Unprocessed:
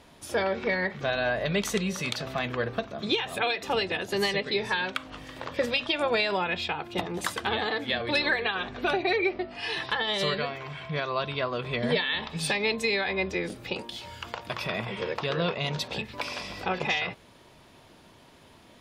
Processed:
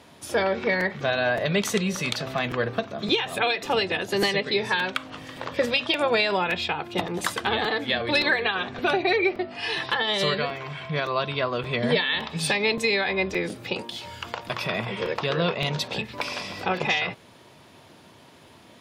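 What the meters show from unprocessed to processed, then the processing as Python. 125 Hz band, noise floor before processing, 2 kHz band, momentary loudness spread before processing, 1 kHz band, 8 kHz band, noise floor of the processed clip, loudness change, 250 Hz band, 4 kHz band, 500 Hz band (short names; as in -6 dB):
+3.5 dB, -55 dBFS, +3.5 dB, 8 LU, +3.5 dB, +3.5 dB, -52 dBFS, +3.5 dB, +3.5 dB, +3.5 dB, +3.5 dB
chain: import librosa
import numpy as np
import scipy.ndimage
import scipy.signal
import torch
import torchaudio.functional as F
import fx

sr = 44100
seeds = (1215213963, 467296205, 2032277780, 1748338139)

y = scipy.signal.sosfilt(scipy.signal.butter(4, 79.0, 'highpass', fs=sr, output='sos'), x)
y = fx.buffer_crackle(y, sr, first_s=0.8, period_s=0.57, block=256, kind='repeat')
y = y * 10.0 ** (3.5 / 20.0)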